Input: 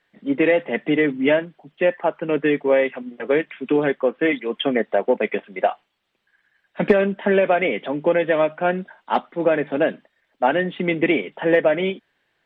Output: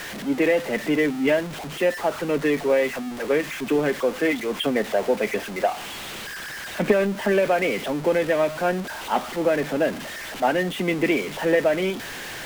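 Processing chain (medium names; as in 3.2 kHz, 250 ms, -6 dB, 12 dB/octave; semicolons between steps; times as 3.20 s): jump at every zero crossing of -24.5 dBFS; trim -4 dB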